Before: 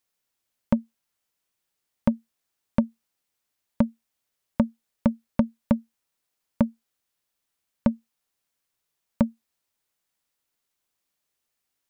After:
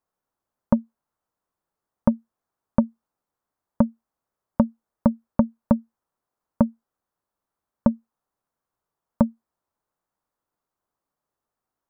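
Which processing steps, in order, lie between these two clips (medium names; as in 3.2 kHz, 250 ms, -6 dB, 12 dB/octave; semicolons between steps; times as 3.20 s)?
resonant high shelf 1.7 kHz -13.5 dB, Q 1.5; trim +2.5 dB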